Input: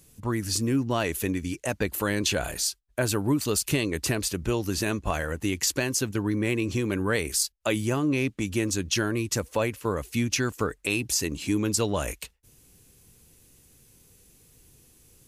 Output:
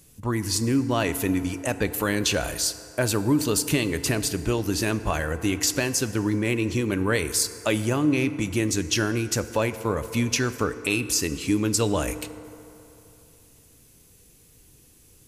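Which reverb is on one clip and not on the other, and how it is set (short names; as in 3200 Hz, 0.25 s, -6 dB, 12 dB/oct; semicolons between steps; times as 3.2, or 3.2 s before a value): FDN reverb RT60 3.1 s, low-frequency decay 0.7×, high-frequency decay 0.45×, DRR 11.5 dB; gain +2 dB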